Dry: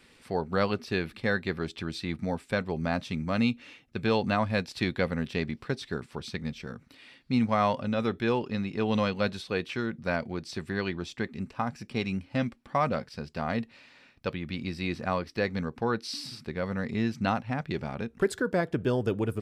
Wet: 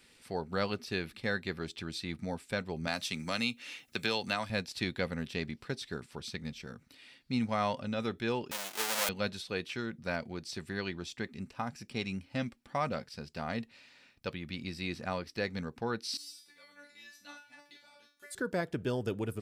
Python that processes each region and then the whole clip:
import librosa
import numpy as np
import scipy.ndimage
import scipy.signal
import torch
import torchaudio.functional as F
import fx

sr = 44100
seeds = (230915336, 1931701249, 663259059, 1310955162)

y = fx.chain(x, sr, fx.tilt_eq(slope=2.5),
    fx.band_squash(depth_pct=70), at=(2.87, 4.5))
y = fx.chain(y, sr, fx.halfwave_hold(),
    fx.highpass(hz=710.0, slope=12), at=(8.51, 9.09))
y = fx.chain(y, sr, fx.tilt_eq(slope=4.0),
    fx.notch(hz=5400.0, q=27.0),
    fx.comb_fb(f0_hz=290.0, decay_s=0.41, harmonics='all', damping=0.0, mix_pct=100), at=(16.17, 18.35))
y = fx.high_shelf(y, sr, hz=3500.0, db=9.0)
y = fx.notch(y, sr, hz=1100.0, q=19.0)
y = F.gain(torch.from_numpy(y), -6.5).numpy()